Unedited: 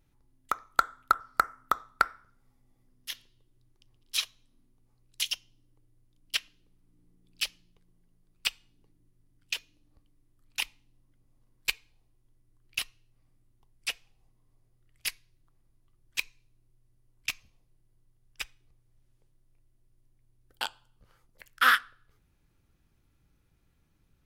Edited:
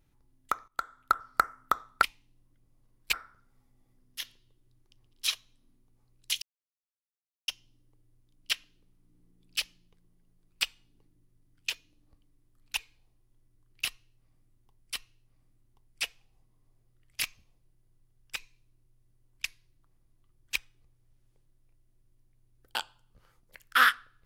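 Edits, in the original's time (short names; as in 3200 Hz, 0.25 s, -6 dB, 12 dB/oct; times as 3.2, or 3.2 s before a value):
0.68–1.22 fade in, from -16.5 dB
5.32 insert silence 1.06 s
10.61–11.71 move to 2.03
12.8–13.88 loop, 2 plays
15.09–16.2 swap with 17.29–18.42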